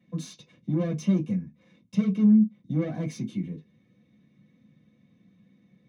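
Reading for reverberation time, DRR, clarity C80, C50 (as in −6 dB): non-exponential decay, −3.5 dB, 32.5 dB, 19.5 dB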